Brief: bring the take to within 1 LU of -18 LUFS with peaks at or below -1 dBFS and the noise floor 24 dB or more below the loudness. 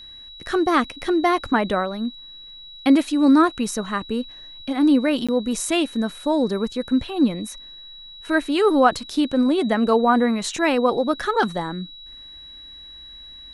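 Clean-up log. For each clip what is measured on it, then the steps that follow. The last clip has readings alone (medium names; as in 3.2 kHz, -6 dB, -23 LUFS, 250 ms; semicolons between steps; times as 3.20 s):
dropouts 1; longest dropout 16 ms; steady tone 3.9 kHz; tone level -39 dBFS; loudness -21.0 LUFS; peak level -3.0 dBFS; loudness target -18.0 LUFS
-> interpolate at 5.27 s, 16 ms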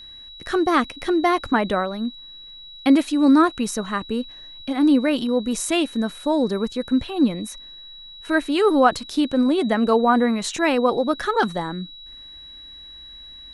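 dropouts 0; steady tone 3.9 kHz; tone level -39 dBFS
-> band-stop 3.9 kHz, Q 30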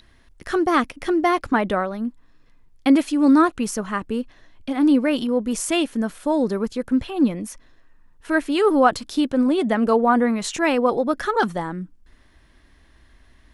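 steady tone not found; loudness -21.0 LUFS; peak level -3.0 dBFS; loudness target -18.0 LUFS
-> trim +3 dB; peak limiter -1 dBFS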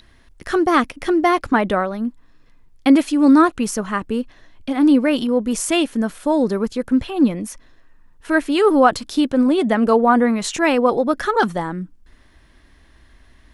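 loudness -18.0 LUFS; peak level -1.0 dBFS; noise floor -51 dBFS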